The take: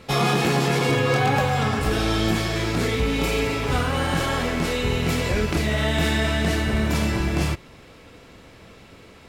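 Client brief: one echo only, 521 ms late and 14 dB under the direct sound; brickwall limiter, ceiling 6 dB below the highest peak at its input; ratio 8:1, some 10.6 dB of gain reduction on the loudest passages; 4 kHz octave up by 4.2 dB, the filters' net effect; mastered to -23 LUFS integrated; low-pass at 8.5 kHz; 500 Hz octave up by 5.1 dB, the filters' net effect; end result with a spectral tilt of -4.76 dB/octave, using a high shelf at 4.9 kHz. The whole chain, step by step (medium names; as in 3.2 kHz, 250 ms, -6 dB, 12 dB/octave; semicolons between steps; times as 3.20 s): low-pass 8.5 kHz; peaking EQ 500 Hz +6 dB; peaking EQ 4 kHz +3 dB; treble shelf 4.9 kHz +5.5 dB; compression 8:1, threshold -25 dBFS; peak limiter -21.5 dBFS; delay 521 ms -14 dB; trim +7.5 dB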